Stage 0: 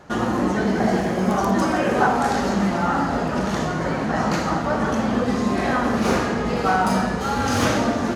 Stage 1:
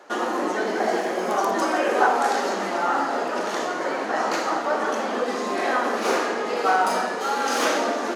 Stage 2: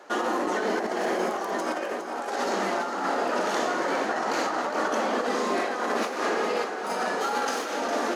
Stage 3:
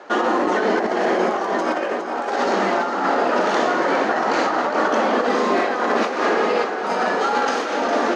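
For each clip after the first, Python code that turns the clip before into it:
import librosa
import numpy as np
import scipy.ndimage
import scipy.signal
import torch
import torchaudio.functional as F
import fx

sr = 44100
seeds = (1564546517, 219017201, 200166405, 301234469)

y1 = scipy.signal.sosfilt(scipy.signal.butter(4, 330.0, 'highpass', fs=sr, output='sos'), x)
y2 = fx.over_compress(y1, sr, threshold_db=-25.0, ratio=-0.5)
y2 = fx.echo_feedback(y2, sr, ms=409, feedback_pct=58, wet_db=-9)
y2 = F.gain(torch.from_numpy(y2), -2.5).numpy()
y3 = fx.air_absorb(y2, sr, metres=110.0)
y3 = F.gain(torch.from_numpy(y3), 8.0).numpy()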